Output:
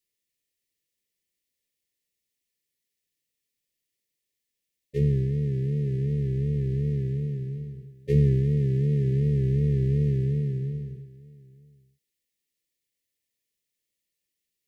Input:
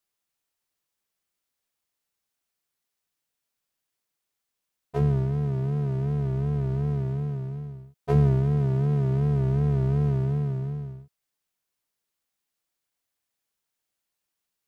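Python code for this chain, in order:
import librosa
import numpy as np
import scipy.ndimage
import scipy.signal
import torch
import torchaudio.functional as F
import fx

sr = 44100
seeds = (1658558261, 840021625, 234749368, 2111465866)

p1 = fx.brickwall_bandstop(x, sr, low_hz=580.0, high_hz=1700.0)
y = p1 + fx.echo_single(p1, sr, ms=908, db=-23.0, dry=0)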